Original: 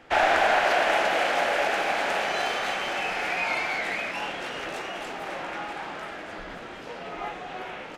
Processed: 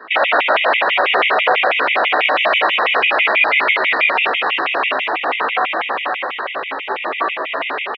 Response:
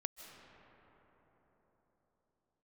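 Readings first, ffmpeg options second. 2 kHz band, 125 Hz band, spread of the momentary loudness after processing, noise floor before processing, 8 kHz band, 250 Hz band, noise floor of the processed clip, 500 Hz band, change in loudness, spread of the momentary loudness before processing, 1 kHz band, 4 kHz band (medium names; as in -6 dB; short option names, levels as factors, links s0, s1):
+12.0 dB, no reading, 9 LU, -40 dBFS, under -15 dB, +5.5 dB, -26 dBFS, +8.5 dB, +11.0 dB, 16 LU, +9.5 dB, +12.5 dB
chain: -filter_complex "[0:a]equalizer=f=1100:t=o:w=0.67:g=8,acompressor=threshold=0.0708:ratio=2.5,asoftclip=type=tanh:threshold=0.1,flanger=delay=0.6:depth=5.5:regen=-29:speed=1.1:shape=sinusoidal,aexciter=amount=3.1:drive=4.6:freq=2300,aeval=exprs='max(val(0),0)':c=same,asplit=2[s0][s1];[s1]adelay=17,volume=0.531[s2];[s0][s2]amix=inputs=2:normalize=0,asplit=2[s3][s4];[1:a]atrim=start_sample=2205[s5];[s4][s5]afir=irnorm=-1:irlink=0,volume=1.68[s6];[s3][s6]amix=inputs=2:normalize=0,highpass=f=450:t=q:w=0.5412,highpass=f=450:t=q:w=1.307,lowpass=f=3100:t=q:w=0.5176,lowpass=f=3100:t=q:w=0.7071,lowpass=f=3100:t=q:w=1.932,afreqshift=-81,alimiter=level_in=7.08:limit=0.891:release=50:level=0:latency=1,afftfilt=real='re*gt(sin(2*PI*6.1*pts/sr)*(1-2*mod(floor(b*sr/1024/1900),2)),0)':imag='im*gt(sin(2*PI*6.1*pts/sr)*(1-2*mod(floor(b*sr/1024/1900),2)),0)':win_size=1024:overlap=0.75,volume=0.891"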